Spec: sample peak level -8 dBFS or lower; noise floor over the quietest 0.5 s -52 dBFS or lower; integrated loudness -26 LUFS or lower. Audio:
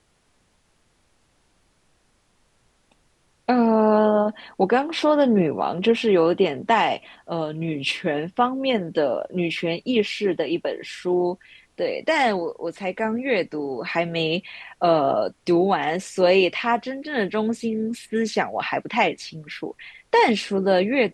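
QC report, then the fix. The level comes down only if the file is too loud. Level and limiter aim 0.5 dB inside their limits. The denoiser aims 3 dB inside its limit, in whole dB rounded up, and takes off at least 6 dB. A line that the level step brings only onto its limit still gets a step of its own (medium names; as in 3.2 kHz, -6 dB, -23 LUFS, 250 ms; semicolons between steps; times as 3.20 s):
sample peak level -5.5 dBFS: fail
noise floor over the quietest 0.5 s -64 dBFS: pass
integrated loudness -22.0 LUFS: fail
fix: trim -4.5 dB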